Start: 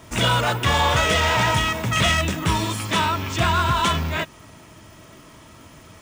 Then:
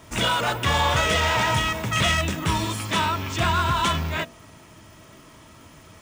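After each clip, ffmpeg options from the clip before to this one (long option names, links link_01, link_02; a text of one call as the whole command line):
ffmpeg -i in.wav -af "bandreject=frequency=60.48:width_type=h:width=4,bandreject=frequency=120.96:width_type=h:width=4,bandreject=frequency=181.44:width_type=h:width=4,bandreject=frequency=241.92:width_type=h:width=4,bandreject=frequency=302.4:width_type=h:width=4,bandreject=frequency=362.88:width_type=h:width=4,bandreject=frequency=423.36:width_type=h:width=4,bandreject=frequency=483.84:width_type=h:width=4,bandreject=frequency=544.32:width_type=h:width=4,bandreject=frequency=604.8:width_type=h:width=4,bandreject=frequency=665.28:width_type=h:width=4,bandreject=frequency=725.76:width_type=h:width=4,volume=-2dB" out.wav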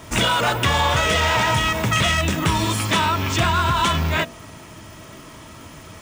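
ffmpeg -i in.wav -af "acompressor=threshold=-23dB:ratio=6,volume=7.5dB" out.wav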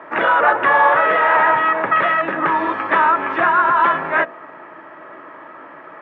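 ffmpeg -i in.wav -af "highpass=frequency=220:width=0.5412,highpass=frequency=220:width=1.3066,equalizer=frequency=220:width_type=q:width=4:gain=-10,equalizer=frequency=350:width_type=q:width=4:gain=3,equalizer=frequency=560:width_type=q:width=4:gain=7,equalizer=frequency=830:width_type=q:width=4:gain=7,equalizer=frequency=1200:width_type=q:width=4:gain=8,equalizer=frequency=1700:width_type=q:width=4:gain=10,lowpass=frequency=2100:width=0.5412,lowpass=frequency=2100:width=1.3066" out.wav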